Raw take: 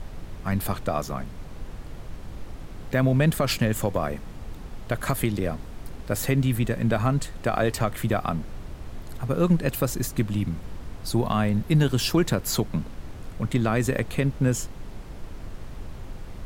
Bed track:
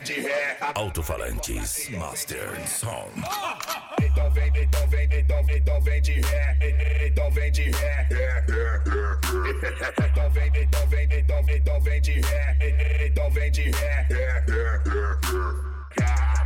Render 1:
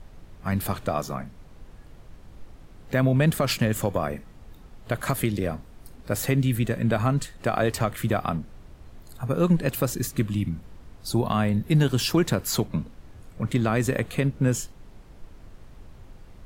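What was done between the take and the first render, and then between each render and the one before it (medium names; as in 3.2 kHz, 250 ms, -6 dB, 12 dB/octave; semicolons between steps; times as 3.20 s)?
noise print and reduce 9 dB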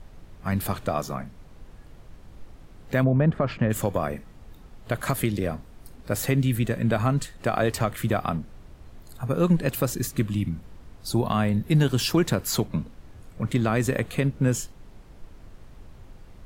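3.03–3.69 s: low-pass 1.1 kHz -> 1.9 kHz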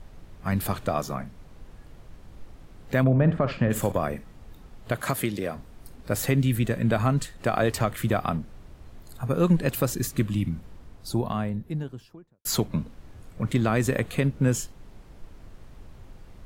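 3.00–3.92 s: flutter echo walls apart 10.3 m, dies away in 0.3 s; 4.92–5.55 s: high-pass 92 Hz -> 380 Hz 6 dB/octave; 10.56–12.45 s: studio fade out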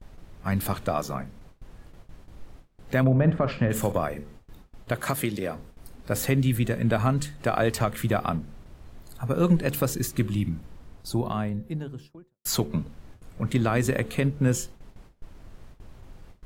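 de-hum 73.37 Hz, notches 7; gate with hold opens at -36 dBFS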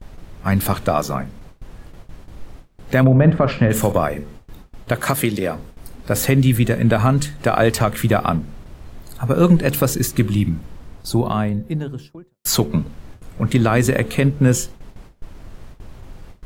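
trim +8.5 dB; peak limiter -3 dBFS, peak gain reduction 2.5 dB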